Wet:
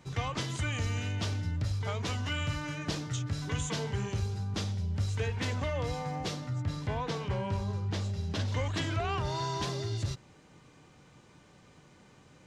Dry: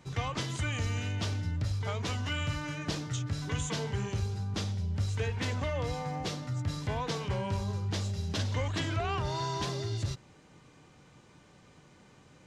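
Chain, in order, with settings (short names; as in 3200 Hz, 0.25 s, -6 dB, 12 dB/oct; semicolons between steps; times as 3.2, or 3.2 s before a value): 6.47–8.48 high shelf 4800 Hz -8 dB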